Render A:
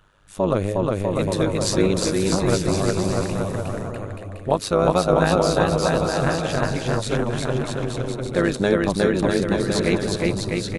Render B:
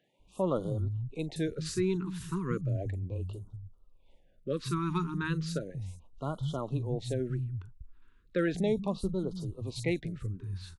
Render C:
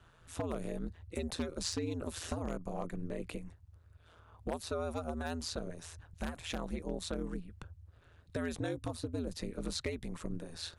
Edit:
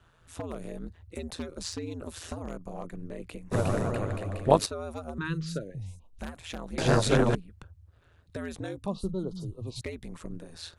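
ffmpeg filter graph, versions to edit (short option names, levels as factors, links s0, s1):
-filter_complex "[0:a]asplit=2[s0][s1];[1:a]asplit=2[s2][s3];[2:a]asplit=5[s4][s5][s6][s7][s8];[s4]atrim=end=3.53[s9];[s0]atrim=start=3.51:end=4.67[s10];[s5]atrim=start=4.65:end=5.182[s11];[s2]atrim=start=5.178:end=6.192[s12];[s6]atrim=start=6.188:end=6.782[s13];[s1]atrim=start=6.778:end=7.352[s14];[s7]atrim=start=7.348:end=8.862[s15];[s3]atrim=start=8.858:end=9.812[s16];[s8]atrim=start=9.808[s17];[s9][s10]acrossfade=d=0.02:c1=tri:c2=tri[s18];[s18][s11]acrossfade=d=0.02:c1=tri:c2=tri[s19];[s19][s12]acrossfade=d=0.004:c1=hsin:c2=hsin[s20];[s20][s13]acrossfade=d=0.004:c1=hsin:c2=hsin[s21];[s21][s14]acrossfade=d=0.004:c1=hsin:c2=hsin[s22];[s22][s15]acrossfade=d=0.004:c1=hsin:c2=hsin[s23];[s23][s16]acrossfade=d=0.004:c1=hsin:c2=hsin[s24];[s24][s17]acrossfade=d=0.004:c1=hsin:c2=hsin"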